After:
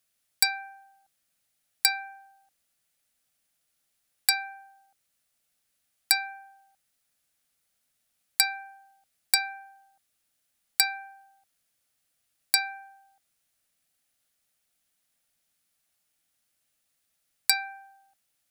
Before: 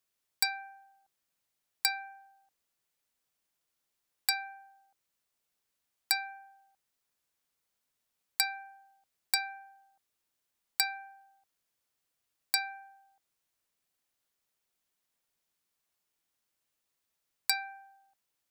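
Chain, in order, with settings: thirty-one-band EQ 400 Hz -11 dB, 1000 Hz -9 dB, 10000 Hz +5 dB; gain +6 dB

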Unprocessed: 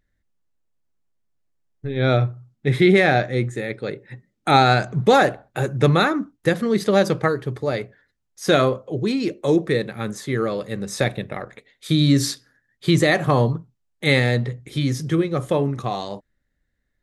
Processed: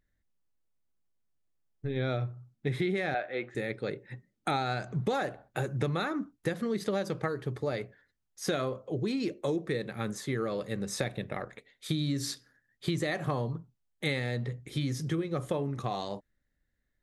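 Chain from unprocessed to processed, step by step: 3.14–3.55 speaker cabinet 430–3700 Hz, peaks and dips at 680 Hz +6 dB, 1500 Hz +5 dB, 2600 Hz +4 dB; compressor 6:1, threshold -22 dBFS, peak gain reduction 12 dB; gain -5.5 dB

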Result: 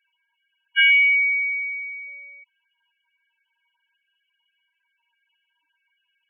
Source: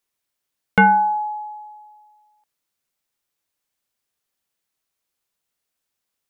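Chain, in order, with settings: per-bin compression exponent 0.6; sample leveller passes 1; loudest bins only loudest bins 4; inverted band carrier 3100 Hz; gain -3 dB

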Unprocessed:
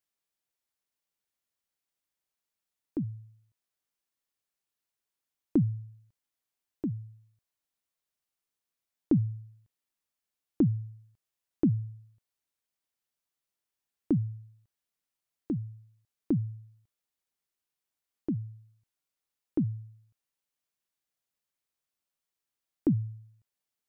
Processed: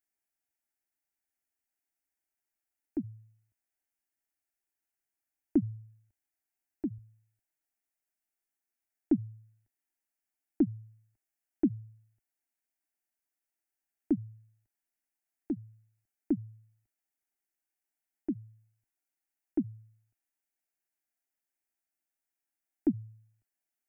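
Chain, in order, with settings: bell 76 Hz +2.5 dB 0.7 oct, from 6.98 s -9.5 dB; fixed phaser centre 740 Hz, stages 8

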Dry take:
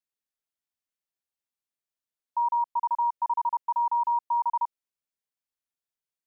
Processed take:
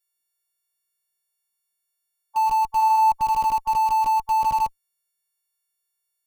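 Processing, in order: frequency quantiser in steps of 4 st; dynamic EQ 950 Hz, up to +4 dB, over -36 dBFS, Q 2.5; 2.7–3.12 flutter echo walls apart 7 m, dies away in 0.41 s; in parallel at -7 dB: Schmitt trigger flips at -26 dBFS

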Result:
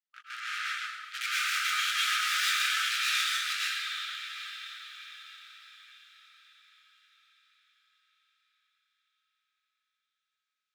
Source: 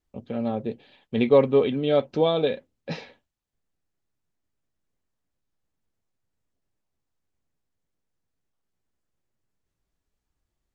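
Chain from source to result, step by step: reverse delay 0.46 s, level -2 dB; LPF 4700 Hz; high shelf 2600 Hz +8 dB; sample leveller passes 3; chorus voices 6, 0.34 Hz, delay 20 ms, depth 4.3 ms; diffused feedback echo 0.782 s, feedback 44%, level -13.5 dB; tube stage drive 28 dB, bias 0.8; brick-wall FIR high-pass 1200 Hz; plate-style reverb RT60 1.2 s, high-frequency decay 0.85×, pre-delay 95 ms, DRR -5.5 dB; gain +2 dB

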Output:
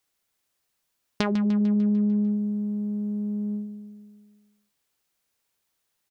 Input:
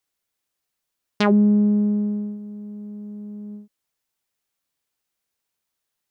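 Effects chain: compressor 6:1, threshold -27 dBFS, peak gain reduction 13 dB; on a send: feedback echo 0.149 s, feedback 59%, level -11.5 dB; on the sum: gain +3.5 dB

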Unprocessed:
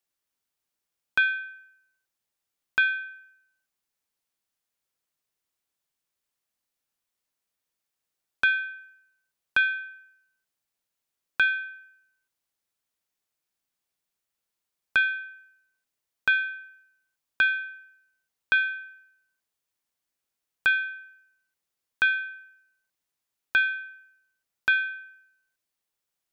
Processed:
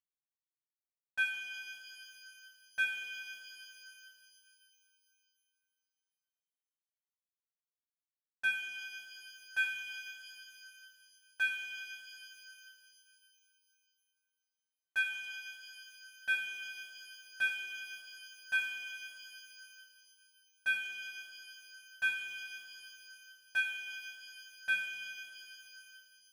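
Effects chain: CVSD 64 kbps; metallic resonator 88 Hz, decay 0.65 s, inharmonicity 0.008; shimmer reverb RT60 3 s, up +12 st, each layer -8 dB, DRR 5.5 dB; gain -3 dB

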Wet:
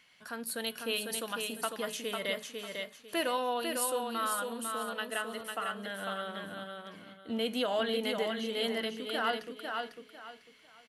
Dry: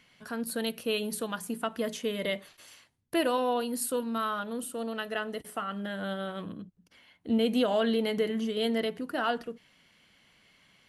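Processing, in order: low shelf 470 Hz -11.5 dB; de-hum 421 Hz, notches 36; on a send: feedback echo 0.499 s, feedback 26%, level -4.5 dB

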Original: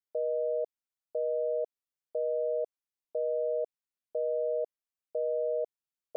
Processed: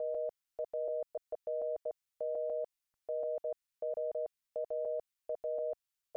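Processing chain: slices in reverse order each 0.147 s, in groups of 3; bell 360 Hz -15 dB 2.2 oct; gain +5.5 dB

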